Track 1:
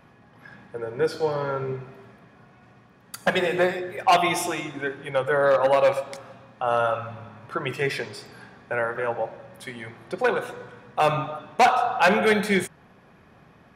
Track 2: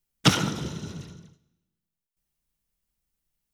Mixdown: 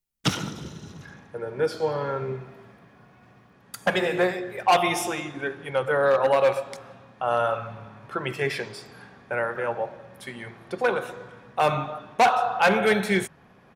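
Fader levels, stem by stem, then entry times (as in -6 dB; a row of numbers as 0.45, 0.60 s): -1.0, -5.0 dB; 0.60, 0.00 s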